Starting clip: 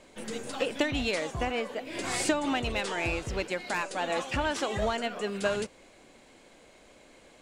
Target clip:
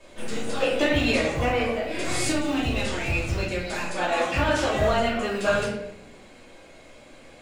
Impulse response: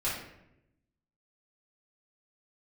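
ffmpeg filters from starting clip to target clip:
-filter_complex "[0:a]acrossover=split=250|3900[a][b][c];[a]acrusher=bits=3:mode=log:mix=0:aa=0.000001[d];[d][b][c]amix=inputs=3:normalize=0,asettb=1/sr,asplit=3[e][f][g];[e]atrim=end=1.994[h];[f]atrim=start=1.99:end=3.94,asetpts=PTS-STARTPTS,afade=t=in:d=0.004:c=qsin,afade=t=out:st=1.946:d=0.004:c=qsin,acrossover=split=320|3000[i][j][k];[j]acompressor=threshold=-40dB:ratio=2.5[l];[i][l][k]amix=inputs=3:normalize=0[m];[g]atrim=start=3.936[n];[h][m]acrossfade=d=0.004:c1=hsin:c2=qsin[o];[o][n]acrossfade=d=0.004:c1=qsin:c2=hsin[p];[1:a]atrim=start_sample=2205[q];[p][q]afir=irnorm=-1:irlink=0"

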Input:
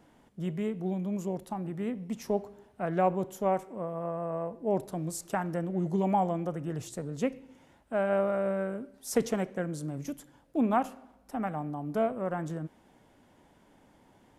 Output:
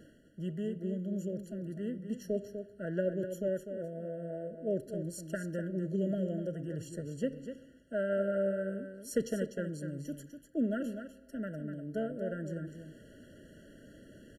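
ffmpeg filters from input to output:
-af "areverse,acompressor=mode=upward:threshold=-38dB:ratio=2.5,areverse,aecho=1:1:248:0.376,afftfilt=real='re*eq(mod(floor(b*sr/1024/670),2),0)':imag='im*eq(mod(floor(b*sr/1024/670),2),0)':win_size=1024:overlap=0.75,volume=-4dB"

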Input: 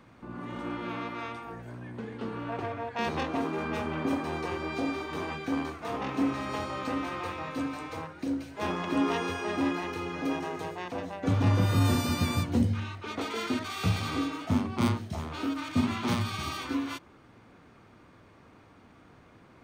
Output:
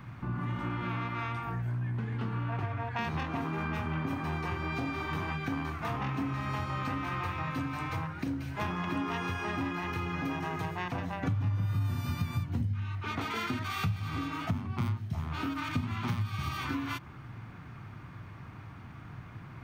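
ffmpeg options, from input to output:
-af "equalizer=f=125:t=o:w=1:g=10,equalizer=f=250:t=o:w=1:g=-5,equalizer=f=500:t=o:w=1:g=-12,equalizer=f=4k:t=o:w=1:g=-5,equalizer=f=8k:t=o:w=1:g=-9,acompressor=threshold=-40dB:ratio=5,volume=9dB"

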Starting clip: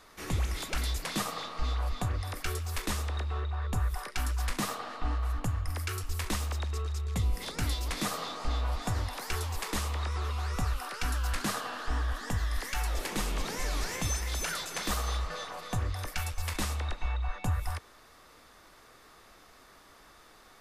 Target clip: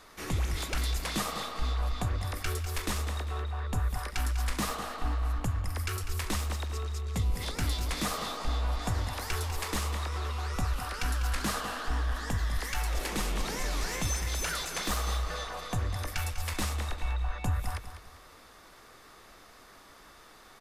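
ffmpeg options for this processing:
-filter_complex "[0:a]asplit=2[a][b];[b]asoftclip=type=tanh:threshold=-34dB,volume=-6dB[c];[a][c]amix=inputs=2:normalize=0,aecho=1:1:198|396|594|792:0.282|0.093|0.0307|0.0101,volume=-1.5dB"

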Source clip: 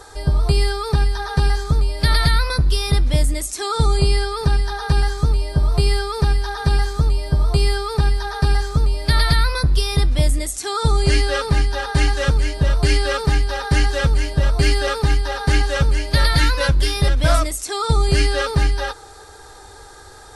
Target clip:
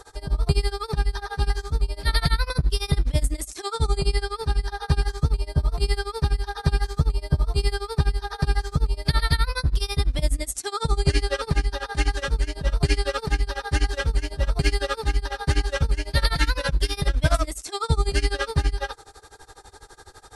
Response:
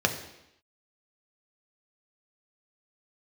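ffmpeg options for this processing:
-af "tremolo=f=12:d=0.94,volume=-2dB"

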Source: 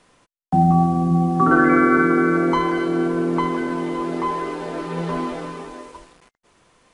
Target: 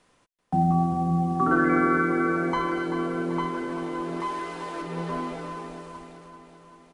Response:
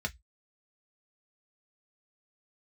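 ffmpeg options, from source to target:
-filter_complex "[0:a]asettb=1/sr,asplit=3[a][b][c];[a]atrim=end=4.204[d];[b]atrim=start=4.2:end=4.82,asetpts=PTS-STARTPTS,afade=t=in:d=0.004:c=qsin,afade=t=out:st=0.616:d=0.004:c=qsin,tiltshelf=f=970:g=-4.5[e];[c]atrim=start=4.816[f];[d][e]acrossfade=d=0.004:c1=hsin:c2=qsin[g];[g][f]acrossfade=d=0.004:c1=qsin:c2=hsin,asplit=2[h][i];[i]aecho=0:1:387|774|1161|1548|1935|2322|2709:0.316|0.187|0.11|0.0649|0.0383|0.0226|0.0133[j];[h][j]amix=inputs=2:normalize=0,volume=-6.5dB"

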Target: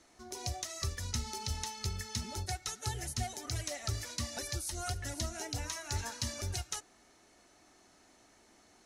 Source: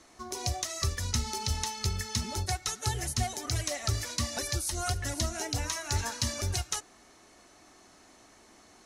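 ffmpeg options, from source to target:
-af "bandreject=f=1.1k:w=13,volume=-6dB"

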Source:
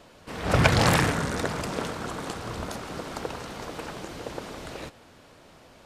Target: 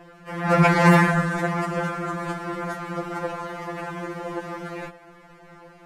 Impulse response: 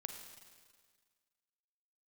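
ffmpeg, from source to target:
-af "highshelf=f=2.6k:t=q:w=1.5:g=-9.5,afftfilt=real='re*2.83*eq(mod(b,8),0)':imag='im*2.83*eq(mod(b,8),0)':win_size=2048:overlap=0.75,volume=7dB"

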